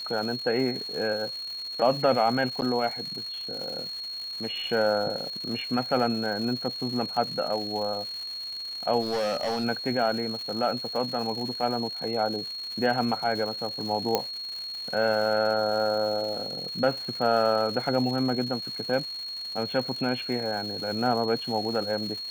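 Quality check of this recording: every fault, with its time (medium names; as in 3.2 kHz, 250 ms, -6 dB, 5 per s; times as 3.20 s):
crackle 340 per s -35 dBFS
whine 4.3 kHz -33 dBFS
2.61–2.62 s: dropout 9.4 ms
9.01–9.65 s: clipped -24 dBFS
14.15 s: pop -8 dBFS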